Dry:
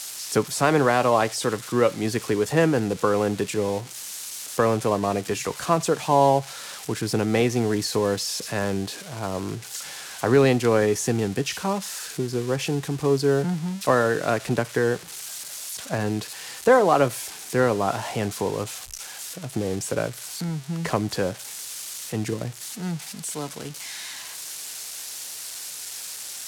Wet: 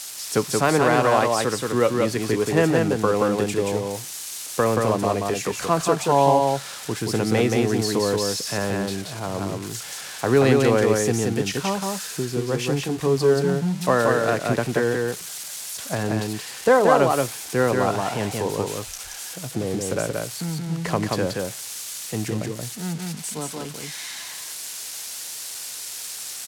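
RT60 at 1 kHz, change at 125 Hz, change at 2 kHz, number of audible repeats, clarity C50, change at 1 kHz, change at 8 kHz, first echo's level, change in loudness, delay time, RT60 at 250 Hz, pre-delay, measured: none, +2.0 dB, +2.0 dB, 1, none, +2.0 dB, +2.0 dB, -3.0 dB, +2.0 dB, 0.178 s, none, none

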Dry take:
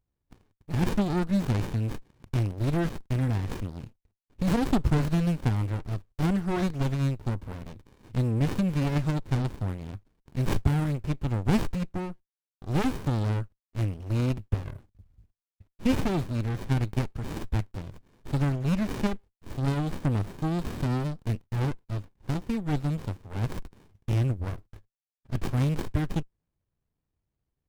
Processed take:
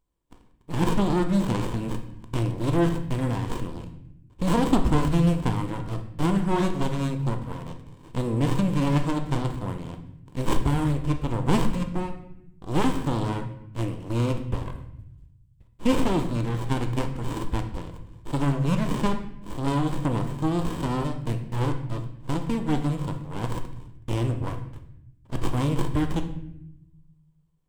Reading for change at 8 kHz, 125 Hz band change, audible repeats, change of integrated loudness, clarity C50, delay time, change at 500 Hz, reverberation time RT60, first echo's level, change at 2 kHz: +4.5 dB, +0.5 dB, none, +2.0 dB, 9.0 dB, none, +5.0 dB, 0.75 s, none, +2.5 dB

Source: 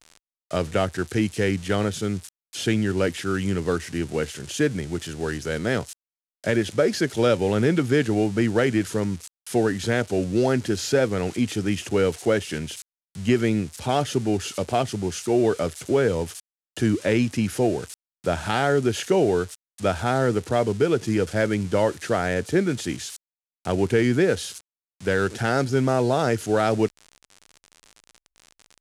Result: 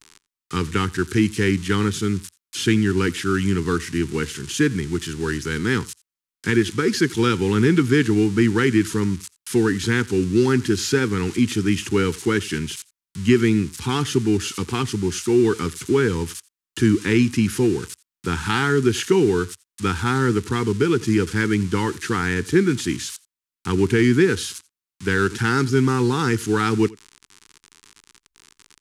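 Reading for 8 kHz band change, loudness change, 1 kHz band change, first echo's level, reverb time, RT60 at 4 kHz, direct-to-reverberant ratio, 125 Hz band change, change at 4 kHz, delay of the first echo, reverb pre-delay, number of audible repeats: +4.0 dB, +3.0 dB, +1.0 dB, -23.0 dB, none, none, none, +4.0 dB, +4.0 dB, 86 ms, none, 1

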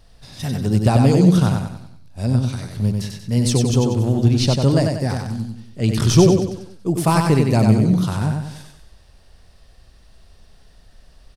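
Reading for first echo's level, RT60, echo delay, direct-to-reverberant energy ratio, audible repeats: -4.0 dB, none, 94 ms, none, 5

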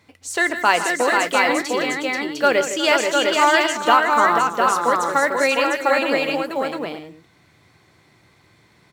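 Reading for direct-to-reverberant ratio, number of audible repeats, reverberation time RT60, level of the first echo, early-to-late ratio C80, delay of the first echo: none, 6, none, -16.5 dB, none, 0.123 s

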